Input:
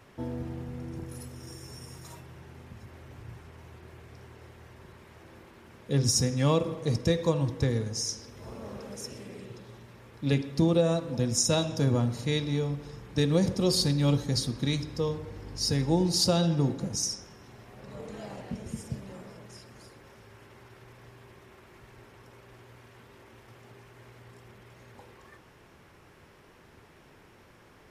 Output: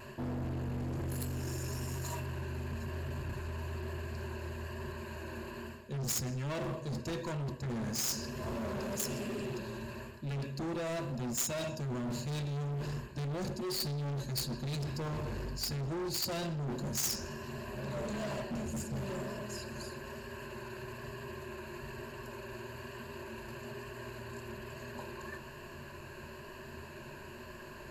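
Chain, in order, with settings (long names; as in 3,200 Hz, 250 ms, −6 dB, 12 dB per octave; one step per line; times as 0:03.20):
EQ curve with evenly spaced ripples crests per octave 1.4, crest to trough 14 dB
reversed playback
downward compressor 10 to 1, threshold −33 dBFS, peak gain reduction 18 dB
reversed playback
hard clipping −40 dBFS, distortion −7 dB
pitch vibrato 1.1 Hz 19 cents
in parallel at −3.5 dB: log-companded quantiser 2 bits
on the sum: level +5.5 dB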